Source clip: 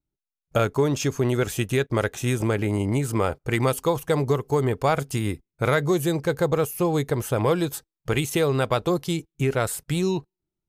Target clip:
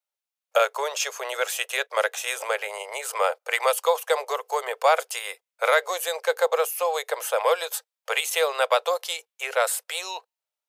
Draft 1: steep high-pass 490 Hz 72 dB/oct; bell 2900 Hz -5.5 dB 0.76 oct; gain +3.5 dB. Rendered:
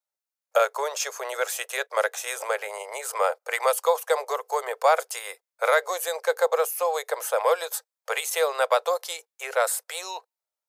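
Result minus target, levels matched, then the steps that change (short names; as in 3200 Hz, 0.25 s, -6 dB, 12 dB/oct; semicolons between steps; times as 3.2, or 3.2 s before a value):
4000 Hz band -4.0 dB
change: bell 2900 Hz +2 dB 0.76 oct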